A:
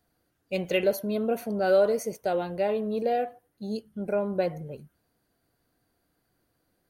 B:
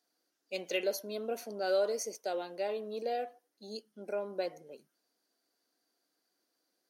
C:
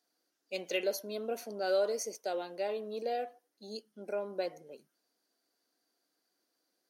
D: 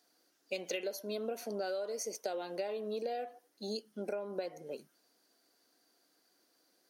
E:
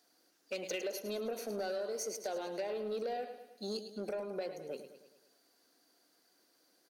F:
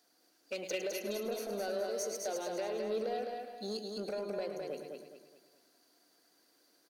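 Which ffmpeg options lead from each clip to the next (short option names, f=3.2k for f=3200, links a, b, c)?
-af "highpass=f=260:w=0.5412,highpass=f=260:w=1.3066,equalizer=f=5.5k:t=o:w=1.1:g=13,volume=-8.5dB"
-af anull
-af "acompressor=threshold=-42dB:ratio=16,volume=8dB"
-af "aecho=1:1:106|212|318|424|530|636:0.282|0.147|0.0762|0.0396|0.0206|0.0107,asoftclip=type=tanh:threshold=-31dB,volume=1dB"
-af "aecho=1:1:209|418|627|836|1045:0.631|0.24|0.0911|0.0346|0.0132"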